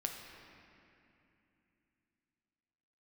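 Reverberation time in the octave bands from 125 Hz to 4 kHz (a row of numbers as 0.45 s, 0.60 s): 3.8 s, 3.9 s, 2.9 s, 2.7 s, 3.0 s, 2.0 s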